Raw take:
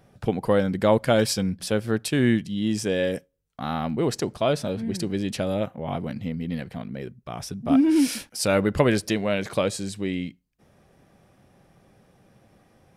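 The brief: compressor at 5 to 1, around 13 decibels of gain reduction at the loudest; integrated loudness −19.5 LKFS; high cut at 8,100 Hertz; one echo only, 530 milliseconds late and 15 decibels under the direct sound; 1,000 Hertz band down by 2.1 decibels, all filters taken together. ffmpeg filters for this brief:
ffmpeg -i in.wav -af "lowpass=8100,equalizer=frequency=1000:width_type=o:gain=-3,acompressor=threshold=-30dB:ratio=5,aecho=1:1:530:0.178,volume=14.5dB" out.wav

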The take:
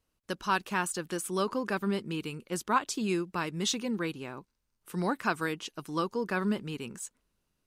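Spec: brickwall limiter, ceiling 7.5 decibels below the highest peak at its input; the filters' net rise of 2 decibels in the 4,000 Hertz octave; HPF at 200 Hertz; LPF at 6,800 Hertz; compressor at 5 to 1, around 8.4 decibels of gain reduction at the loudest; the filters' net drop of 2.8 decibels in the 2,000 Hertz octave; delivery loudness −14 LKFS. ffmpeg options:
ffmpeg -i in.wav -af "highpass=200,lowpass=6800,equalizer=frequency=2000:width_type=o:gain=-5,equalizer=frequency=4000:width_type=o:gain=4.5,acompressor=threshold=-31dB:ratio=5,volume=25dB,alimiter=limit=-2.5dB:level=0:latency=1" out.wav

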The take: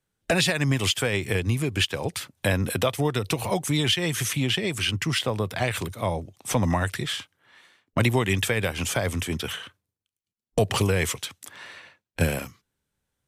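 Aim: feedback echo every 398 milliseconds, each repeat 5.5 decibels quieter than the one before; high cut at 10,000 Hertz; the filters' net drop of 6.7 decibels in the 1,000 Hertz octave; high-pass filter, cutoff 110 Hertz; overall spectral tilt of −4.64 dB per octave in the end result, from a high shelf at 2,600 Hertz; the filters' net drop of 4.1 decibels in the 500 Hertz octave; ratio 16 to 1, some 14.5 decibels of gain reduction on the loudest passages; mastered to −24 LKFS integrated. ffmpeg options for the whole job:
ffmpeg -i in.wav -af "highpass=110,lowpass=10000,equalizer=frequency=500:width_type=o:gain=-3,equalizer=frequency=1000:width_type=o:gain=-6.5,highshelf=frequency=2600:gain=-9,acompressor=threshold=-35dB:ratio=16,aecho=1:1:398|796|1194|1592|1990|2388|2786:0.531|0.281|0.149|0.079|0.0419|0.0222|0.0118,volume=15.5dB" out.wav

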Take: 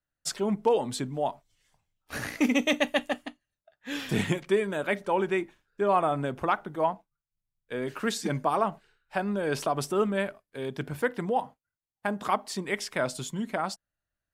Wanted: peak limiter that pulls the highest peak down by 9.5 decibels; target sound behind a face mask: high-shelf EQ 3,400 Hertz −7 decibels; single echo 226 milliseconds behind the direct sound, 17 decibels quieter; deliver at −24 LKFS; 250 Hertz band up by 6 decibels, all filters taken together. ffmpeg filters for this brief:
ffmpeg -i in.wav -af "equalizer=frequency=250:width_type=o:gain=7.5,alimiter=limit=-18dB:level=0:latency=1,highshelf=frequency=3400:gain=-7,aecho=1:1:226:0.141,volume=6dB" out.wav

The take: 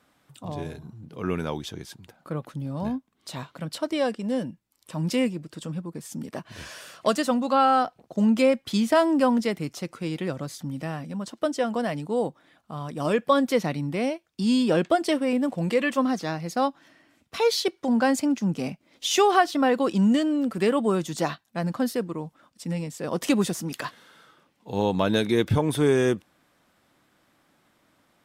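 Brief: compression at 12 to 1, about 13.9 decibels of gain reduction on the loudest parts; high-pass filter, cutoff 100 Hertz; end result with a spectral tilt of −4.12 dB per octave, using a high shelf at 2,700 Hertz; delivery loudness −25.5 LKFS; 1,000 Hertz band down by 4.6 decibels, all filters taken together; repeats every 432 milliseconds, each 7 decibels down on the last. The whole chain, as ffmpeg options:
ffmpeg -i in.wav -af "highpass=100,equalizer=frequency=1000:width_type=o:gain=-8,highshelf=frequency=2700:gain=9,acompressor=threshold=-31dB:ratio=12,aecho=1:1:432|864|1296|1728|2160:0.447|0.201|0.0905|0.0407|0.0183,volume=9.5dB" out.wav

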